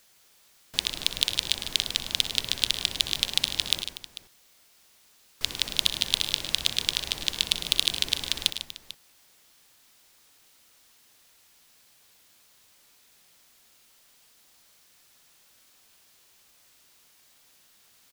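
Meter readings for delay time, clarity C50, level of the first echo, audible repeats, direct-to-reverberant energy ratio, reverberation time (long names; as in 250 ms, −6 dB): 62 ms, no reverb audible, −14.5 dB, 5, no reverb audible, no reverb audible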